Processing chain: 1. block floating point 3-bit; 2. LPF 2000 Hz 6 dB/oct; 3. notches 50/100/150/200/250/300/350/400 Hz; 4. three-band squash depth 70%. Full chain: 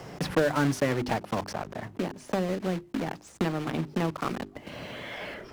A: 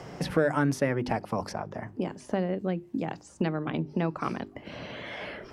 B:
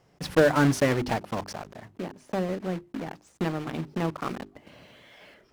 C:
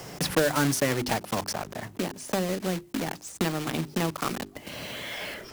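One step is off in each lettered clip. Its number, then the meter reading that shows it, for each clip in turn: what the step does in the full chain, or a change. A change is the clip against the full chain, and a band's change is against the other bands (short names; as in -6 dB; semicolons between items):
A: 1, distortion -10 dB; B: 4, crest factor change +4.0 dB; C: 2, 8 kHz band +10.0 dB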